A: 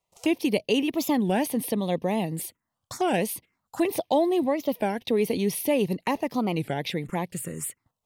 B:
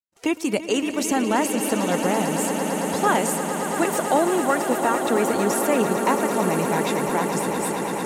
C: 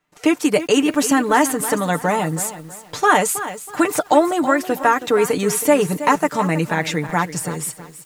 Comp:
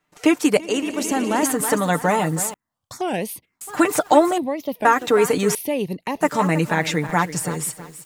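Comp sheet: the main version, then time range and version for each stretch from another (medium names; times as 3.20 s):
C
0.57–1.43 s: from B
2.54–3.61 s: from A
4.38–4.85 s: from A
5.55–6.21 s: from A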